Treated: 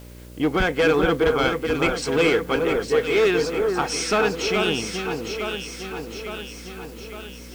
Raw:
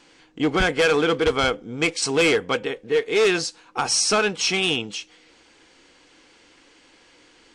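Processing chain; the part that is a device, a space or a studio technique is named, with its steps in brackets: treble shelf 4 kHz -10.5 dB; video cassette with head-switching buzz (mains buzz 60 Hz, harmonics 10, -42 dBFS -5 dB/octave; white noise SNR 28 dB); echo whose repeats swap between lows and highs 429 ms, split 1.6 kHz, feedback 75%, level -4 dB

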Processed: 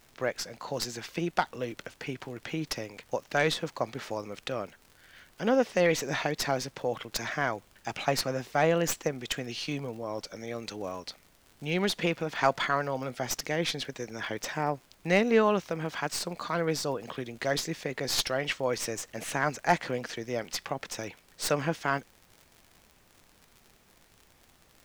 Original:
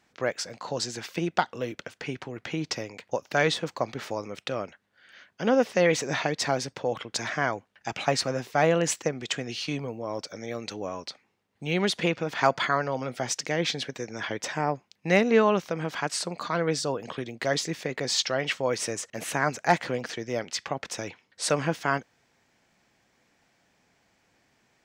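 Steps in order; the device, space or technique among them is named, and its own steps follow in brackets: record under a worn stylus (tracing distortion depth 0.044 ms; crackle 73 per s -39 dBFS; pink noise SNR 31 dB); trim -2.5 dB

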